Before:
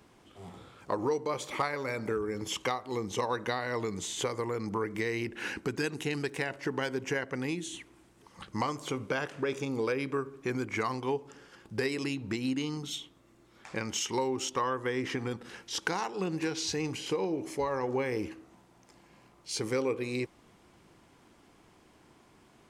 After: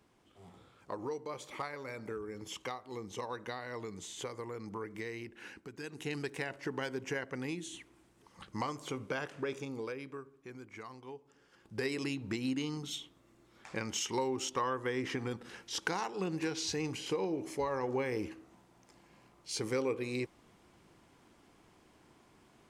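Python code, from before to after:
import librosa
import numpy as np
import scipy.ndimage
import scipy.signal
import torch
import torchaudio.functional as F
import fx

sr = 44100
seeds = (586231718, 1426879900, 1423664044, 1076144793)

y = fx.gain(x, sr, db=fx.line((5.06, -9.0), (5.71, -15.5), (6.1, -5.0), (9.45, -5.0), (10.44, -16.0), (11.26, -16.0), (11.9, -3.0)))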